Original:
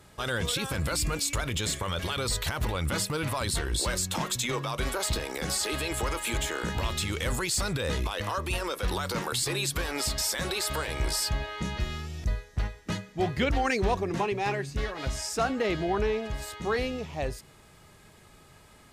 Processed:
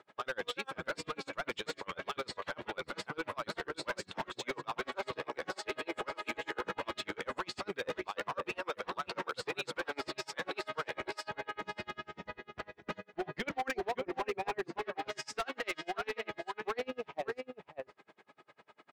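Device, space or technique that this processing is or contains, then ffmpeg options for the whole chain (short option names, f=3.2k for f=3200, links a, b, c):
helicopter radio: -filter_complex "[0:a]asettb=1/sr,asplit=3[a][b][c];[a]atrim=end=15.084[d];[b]atrim=start=15.08:end=16.24,asetpts=PTS-STARTPTS,afade=t=in:d=0.004:c=qsin,afade=t=out:st=1.156:d=0.004:c=qsin,tiltshelf=f=1.1k:g=-9[e];[c]atrim=start=16.236[f];[d][e]acrossfade=d=0.004:c1=hsin:c2=qsin[g];[g][f]acrossfade=d=0.004:c1=qsin:c2=hsin,highpass=360,lowpass=2.6k,asplit=2[h][i];[i]adelay=559.8,volume=-6dB,highshelf=f=4k:g=-12.6[j];[h][j]amix=inputs=2:normalize=0,aeval=exprs='val(0)*pow(10,-35*(0.5-0.5*cos(2*PI*10*n/s))/20)':c=same,asoftclip=type=hard:threshold=-32.5dB,volume=3dB"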